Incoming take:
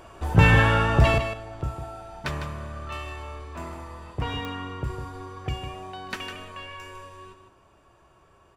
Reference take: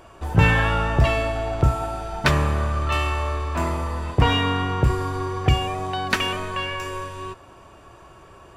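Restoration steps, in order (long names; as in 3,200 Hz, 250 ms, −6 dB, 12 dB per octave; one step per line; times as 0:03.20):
click removal
echo removal 154 ms −8.5 dB
level 0 dB, from 0:01.18 +12 dB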